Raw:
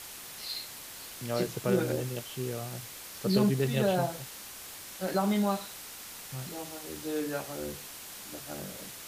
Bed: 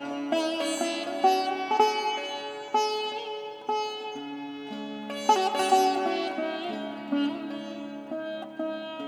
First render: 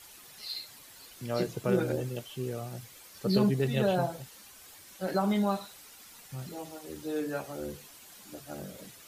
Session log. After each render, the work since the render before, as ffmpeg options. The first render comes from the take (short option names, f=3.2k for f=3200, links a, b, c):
-af "afftdn=nr=10:nf=-45"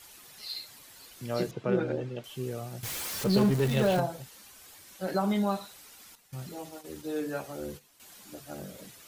-filter_complex "[0:a]asettb=1/sr,asplit=3[a][b][c];[a]atrim=end=1.514[d];[b]atrim=start=1.51:end=2.24,asetpts=PTS-STARTPTS,afade=t=in:d=0.004:c=qsin,afade=t=out:st=0.726:d=0.004:c=qsin,highpass=120,lowpass=3.3k[e];[c]atrim=start=2.236[f];[d][e]acrossfade=d=0.004:c1=hsin:c2=qsin[g];[g][f]acrossfade=d=0.004:c1=qsin:c2=hsin,asettb=1/sr,asplit=3[h][i][j];[h]atrim=end=2.834[k];[i]atrim=start=2.83:end=4,asetpts=PTS-STARTPTS,afade=t=in:d=0.004:c=qsin,afade=t=out:st=1.166:d=0.004:c=qsin,aeval=exprs='val(0)+0.5*0.0282*sgn(val(0))':c=same[l];[j]atrim=start=3.996[m];[k][l]acrossfade=d=0.004:c1=hsin:c2=qsin[n];[n][m]acrossfade=d=0.004:c1=qsin:c2=hsin,asettb=1/sr,asplit=3[o][p][q];[o]atrim=end=6.154[r];[p]atrim=start=6.15:end=8,asetpts=PTS-STARTPTS,afade=t=in:d=0.004:c=qsin,afade=t=out:st=1.846:d=0.004:c=qsin,agate=range=-11dB:threshold=-48dB:ratio=16:release=100:detection=peak[s];[q]atrim=start=7.996[t];[r][s]acrossfade=d=0.004:c1=hsin:c2=qsin[u];[u][t]acrossfade=d=0.004:c1=qsin:c2=hsin"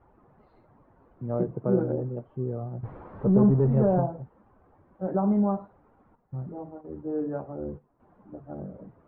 -af "lowpass=f=1.1k:w=0.5412,lowpass=f=1.1k:w=1.3066,lowshelf=f=370:g=6.5"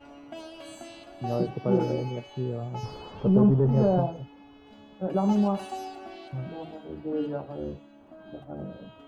-filter_complex "[1:a]volume=-15dB[a];[0:a][a]amix=inputs=2:normalize=0"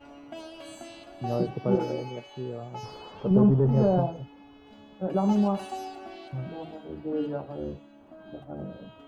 -filter_complex "[0:a]asettb=1/sr,asplit=3[a][b][c];[a]atrim=end=1.754[d];[b]atrim=start=1.75:end=3.31,asetpts=PTS-STARTPTS,afade=t=in:d=0.004:c=qsin,afade=t=out:st=1.556:d=0.004:c=qsin,lowshelf=f=220:g=-10[e];[c]atrim=start=3.306[f];[d][e]acrossfade=d=0.004:c1=hsin:c2=qsin[g];[g][f]acrossfade=d=0.004:c1=qsin:c2=hsin"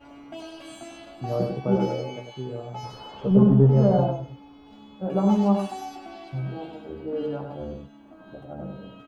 -filter_complex "[0:a]asplit=2[a][b];[b]adelay=15,volume=-5dB[c];[a][c]amix=inputs=2:normalize=0,asplit=2[d][e];[e]aecho=0:1:99:0.531[f];[d][f]amix=inputs=2:normalize=0"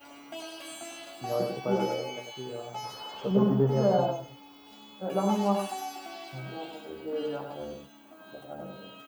-filter_complex "[0:a]acrossover=split=3100[a][b];[b]acompressor=threshold=-55dB:ratio=4:attack=1:release=60[c];[a][c]amix=inputs=2:normalize=0,aemphasis=mode=production:type=riaa"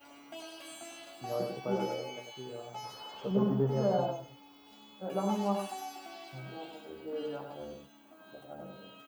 -af "volume=-5dB"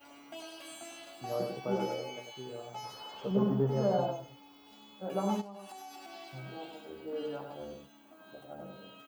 -filter_complex "[0:a]asplit=3[a][b][c];[a]afade=t=out:st=5.4:d=0.02[d];[b]acompressor=threshold=-44dB:ratio=5:attack=3.2:release=140:knee=1:detection=peak,afade=t=in:st=5.4:d=0.02,afade=t=out:st=6.12:d=0.02[e];[c]afade=t=in:st=6.12:d=0.02[f];[d][e][f]amix=inputs=3:normalize=0"